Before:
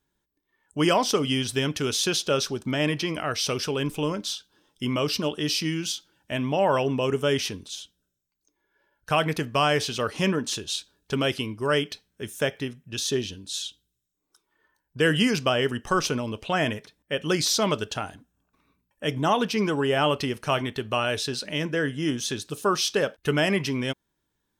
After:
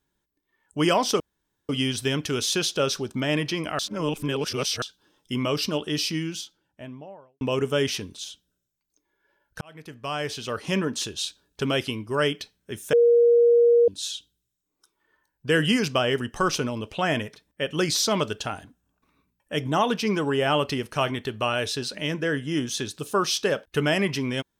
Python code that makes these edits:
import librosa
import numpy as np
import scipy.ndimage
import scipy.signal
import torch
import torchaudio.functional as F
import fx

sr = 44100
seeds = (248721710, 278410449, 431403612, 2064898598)

y = fx.studio_fade_out(x, sr, start_s=5.43, length_s=1.49)
y = fx.edit(y, sr, fx.insert_room_tone(at_s=1.2, length_s=0.49),
    fx.reverse_span(start_s=3.3, length_s=1.03),
    fx.fade_in_span(start_s=9.12, length_s=1.32),
    fx.bleep(start_s=12.44, length_s=0.95, hz=473.0, db=-13.5), tone=tone)